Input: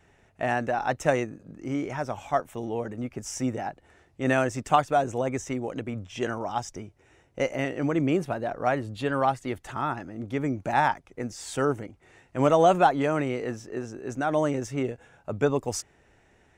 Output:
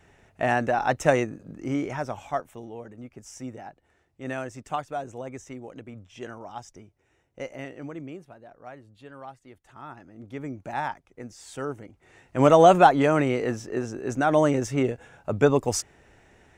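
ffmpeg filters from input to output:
-af "volume=18.8,afade=t=out:st=1.6:d=1.11:silence=0.251189,afade=t=out:st=7.68:d=0.55:silence=0.354813,afade=t=in:st=9.62:d=0.78:silence=0.281838,afade=t=in:st=11.79:d=0.72:silence=0.266073"

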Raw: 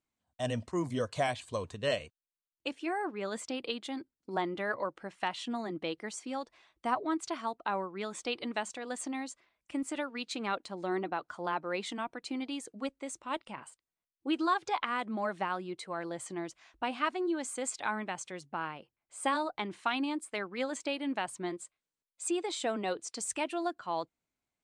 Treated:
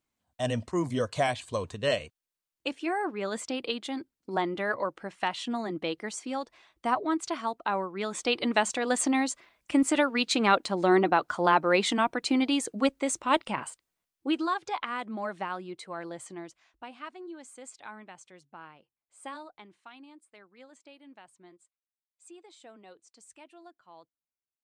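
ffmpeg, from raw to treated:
-af "volume=3.76,afade=t=in:st=7.94:d=0.9:silence=0.421697,afade=t=out:st=13.61:d=0.88:silence=0.251189,afade=t=out:st=16.07:d=0.82:silence=0.316228,afade=t=out:st=19.32:d=0.49:silence=0.421697"

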